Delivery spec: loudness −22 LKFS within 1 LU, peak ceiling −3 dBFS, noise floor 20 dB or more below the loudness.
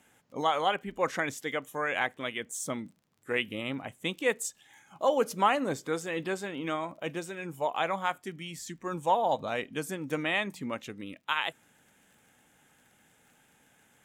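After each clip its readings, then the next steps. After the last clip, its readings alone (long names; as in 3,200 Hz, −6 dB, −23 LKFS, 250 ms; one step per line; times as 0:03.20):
crackle rate 34 per second; integrated loudness −31.5 LKFS; sample peak −13.0 dBFS; target loudness −22.0 LKFS
→ click removal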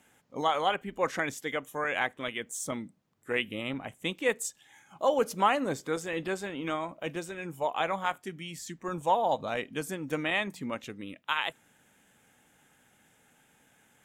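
crackle rate 0.21 per second; integrated loudness −31.5 LKFS; sample peak −13.0 dBFS; target loudness −22.0 LKFS
→ level +9.5 dB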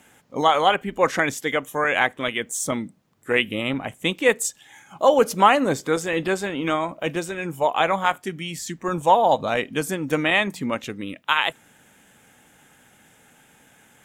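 integrated loudness −22.0 LKFS; sample peak −3.5 dBFS; background noise floor −56 dBFS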